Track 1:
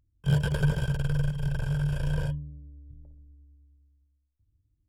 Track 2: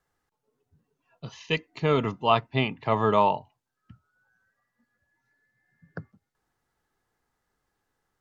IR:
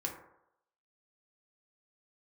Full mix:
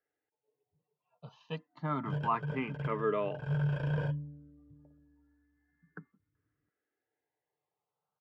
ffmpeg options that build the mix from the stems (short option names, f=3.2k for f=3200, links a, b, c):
-filter_complex "[0:a]adelay=1800,volume=0.5dB[a];[1:a]asplit=2[b][c];[c]afreqshift=0.29[d];[b][d]amix=inputs=2:normalize=1,volume=-6dB,asplit=2[e][f];[f]apad=whole_len=294837[g];[a][g]sidechaincompress=threshold=-48dB:ratio=5:attack=45:release=191[h];[h][e]amix=inputs=2:normalize=0,highpass=180,lowpass=2.2k,aecho=1:1:6.7:0.31"